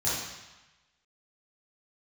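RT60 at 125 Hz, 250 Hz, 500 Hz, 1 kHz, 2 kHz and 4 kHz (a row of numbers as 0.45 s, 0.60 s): 1.1 s, 1.0 s, 0.95 s, 1.2 s, 1.2 s, 1.1 s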